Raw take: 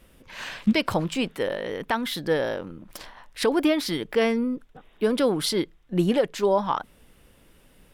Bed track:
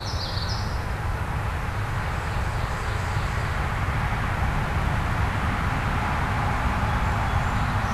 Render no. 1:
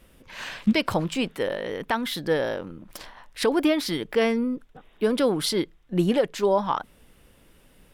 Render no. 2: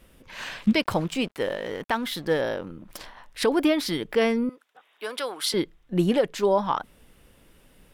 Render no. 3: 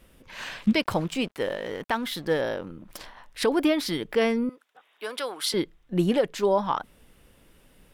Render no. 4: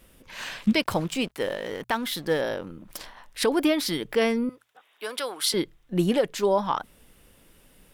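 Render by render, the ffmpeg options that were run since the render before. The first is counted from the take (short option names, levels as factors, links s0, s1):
-af anull
-filter_complex "[0:a]asettb=1/sr,asplit=3[s0][s1][s2];[s0]atrim=end=0.824[s3];[s1]atrim=start=0.82:end=2.41,asetpts=PTS-STARTPTS,afade=t=in:d=0.004:c=qsin,afade=t=out:st=1.586:d=0.004:c=qsin,aeval=exprs='sgn(val(0))*max(abs(val(0))-0.00501,0)':c=same[s4];[s2]atrim=start=2.406[s5];[s3][s4]acrossfade=d=0.004:c1=hsin:c2=qsin[s6];[s6][s5]acrossfade=d=0.004:c1=qsin:c2=hsin,asettb=1/sr,asplit=3[s7][s8][s9];[s7]atrim=end=4.494[s10];[s8]atrim=start=4.49:end=5.54,asetpts=PTS-STARTPTS,afade=t=in:d=0.004:c=qsin,afade=t=out:st=1.046:d=0.004:c=qsin,highpass=850[s11];[s9]atrim=start=5.536[s12];[s10][s11]acrossfade=d=0.004:c1=hsin:c2=qsin[s13];[s13][s12]acrossfade=d=0.004:c1=qsin:c2=hsin"
-af "volume=0.891"
-af "highshelf=f=5100:g=6,bandreject=f=60:t=h:w=6,bandreject=f=120:t=h:w=6"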